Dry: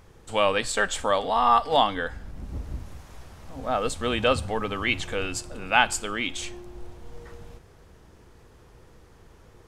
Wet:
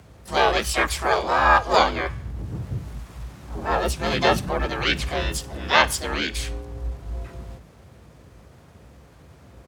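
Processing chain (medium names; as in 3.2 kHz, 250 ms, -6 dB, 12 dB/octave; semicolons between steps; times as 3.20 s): harmony voices -7 st -2 dB, +5 st -1 dB, +12 st -13 dB; frequency shift +53 Hz; trim -1 dB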